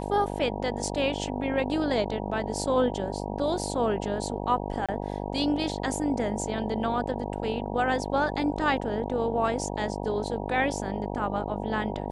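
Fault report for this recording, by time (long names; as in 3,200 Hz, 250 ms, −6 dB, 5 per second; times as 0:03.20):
mains buzz 50 Hz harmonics 19 −33 dBFS
0:04.86–0:04.89: drop-out 26 ms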